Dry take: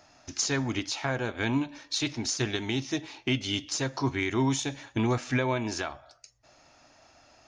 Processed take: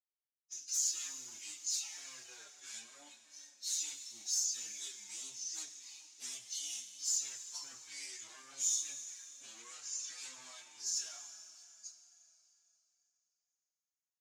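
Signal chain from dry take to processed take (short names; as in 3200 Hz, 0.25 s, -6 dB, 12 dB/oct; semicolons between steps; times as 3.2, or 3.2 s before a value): one-sided fold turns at -29.5 dBFS; gate -53 dBFS, range -37 dB; reverb removal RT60 0.98 s; in parallel at +0.5 dB: limiter -24 dBFS, peak gain reduction 7 dB; on the sum: sample leveller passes 3; plain phase-vocoder stretch 1.9×; band-pass 7100 Hz, Q 3.8; Schroeder reverb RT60 3.2 s, combs from 31 ms, DRR 8 dB; endless flanger 5.6 ms -2.2 Hz; gain -3.5 dB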